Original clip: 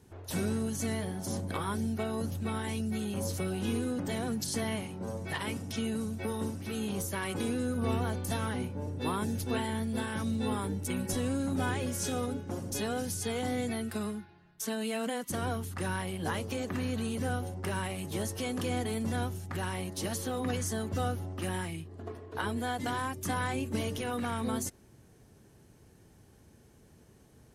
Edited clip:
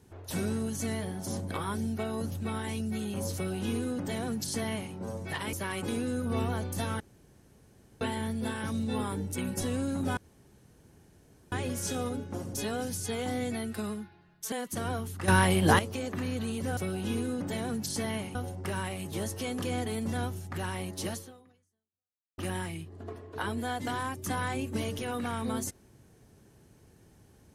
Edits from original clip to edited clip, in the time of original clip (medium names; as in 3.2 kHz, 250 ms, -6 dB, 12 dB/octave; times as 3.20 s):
3.35–4.93 s: copy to 17.34 s
5.53–7.05 s: delete
8.52–9.53 s: room tone
11.69 s: insert room tone 1.35 s
14.69–15.09 s: delete
15.85–16.36 s: gain +11.5 dB
20.10–21.37 s: fade out exponential